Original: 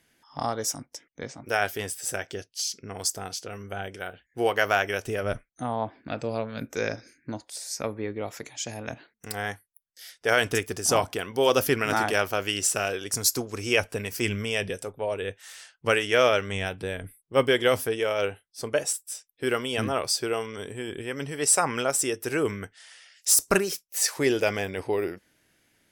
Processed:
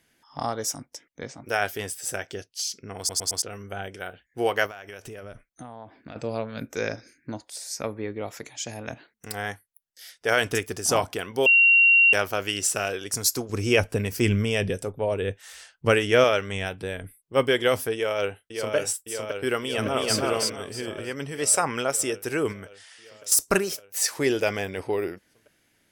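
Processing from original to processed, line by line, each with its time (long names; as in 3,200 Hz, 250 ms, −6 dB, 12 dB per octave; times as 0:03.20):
0:02.98: stutter in place 0.11 s, 4 plays
0:04.66–0:06.16: downward compressor 10 to 1, threshold −36 dBFS
0:11.46–0:12.13: beep over 2,750 Hz −13 dBFS
0:13.49–0:16.24: low-shelf EQ 390 Hz +9.5 dB
0:17.94–0:18.75: delay throw 560 ms, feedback 75%, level −5 dB
0:19.61–0:20.17: delay throw 320 ms, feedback 25%, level −1 dB
0:22.52–0:23.32: downward compressor 1.5 to 1, threshold −43 dBFS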